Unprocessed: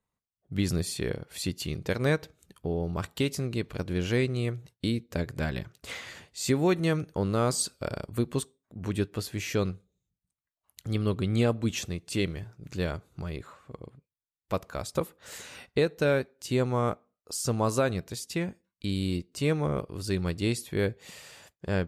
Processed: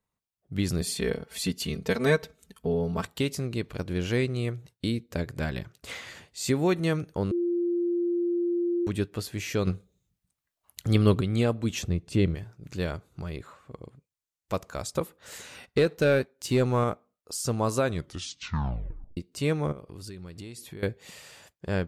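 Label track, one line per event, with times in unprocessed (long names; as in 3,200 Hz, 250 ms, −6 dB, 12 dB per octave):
0.810000	3.050000	comb filter 4.5 ms, depth 99%
7.310000	8.870000	beep over 347 Hz −23.5 dBFS
9.670000	11.210000	clip gain +7 dB
11.820000	12.350000	spectral tilt −2.5 dB per octave
13.770000	14.930000	parametric band 6,900 Hz +5.5 dB
15.630000	16.840000	leveller curve on the samples passes 1
17.860000	17.860000	tape stop 1.31 s
19.720000	20.830000	downward compressor 8 to 1, threshold −37 dBFS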